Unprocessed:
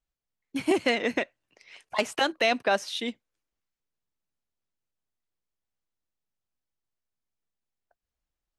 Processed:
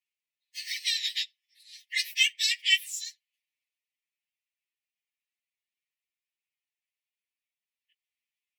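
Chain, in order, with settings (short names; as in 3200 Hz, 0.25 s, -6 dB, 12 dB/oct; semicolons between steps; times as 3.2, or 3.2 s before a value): pitch shift by moving bins +11.5 st; brick-wall FIR high-pass 1700 Hz; bell 2500 Hz +13.5 dB 1 oct; gain +1.5 dB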